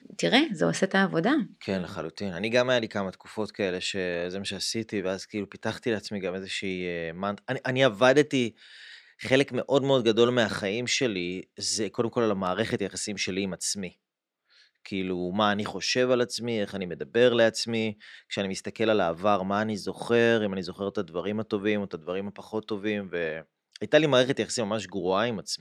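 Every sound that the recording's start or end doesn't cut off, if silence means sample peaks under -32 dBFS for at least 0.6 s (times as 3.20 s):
9.21–13.88 s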